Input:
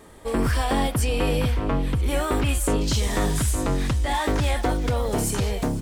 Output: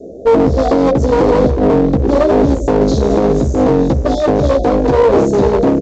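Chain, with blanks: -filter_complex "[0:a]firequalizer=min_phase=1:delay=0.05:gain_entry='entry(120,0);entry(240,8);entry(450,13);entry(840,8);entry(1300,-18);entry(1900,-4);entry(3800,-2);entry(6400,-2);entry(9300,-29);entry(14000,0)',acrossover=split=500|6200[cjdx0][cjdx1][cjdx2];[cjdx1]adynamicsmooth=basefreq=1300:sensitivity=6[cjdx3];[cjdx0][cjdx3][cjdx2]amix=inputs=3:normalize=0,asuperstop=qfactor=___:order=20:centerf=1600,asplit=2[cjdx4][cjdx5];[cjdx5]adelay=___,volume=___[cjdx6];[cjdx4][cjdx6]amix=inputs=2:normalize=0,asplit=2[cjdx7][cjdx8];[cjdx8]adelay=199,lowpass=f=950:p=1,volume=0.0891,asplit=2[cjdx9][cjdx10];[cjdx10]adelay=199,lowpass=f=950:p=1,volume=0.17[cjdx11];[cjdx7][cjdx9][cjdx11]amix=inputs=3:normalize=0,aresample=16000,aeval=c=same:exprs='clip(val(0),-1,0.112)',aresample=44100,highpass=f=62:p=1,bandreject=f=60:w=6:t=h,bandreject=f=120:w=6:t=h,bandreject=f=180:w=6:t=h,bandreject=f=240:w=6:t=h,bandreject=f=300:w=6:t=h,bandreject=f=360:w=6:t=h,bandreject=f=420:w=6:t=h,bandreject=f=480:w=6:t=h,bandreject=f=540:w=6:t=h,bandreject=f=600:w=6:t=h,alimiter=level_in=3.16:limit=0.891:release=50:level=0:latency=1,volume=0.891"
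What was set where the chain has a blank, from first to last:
0.55, 15, 0.668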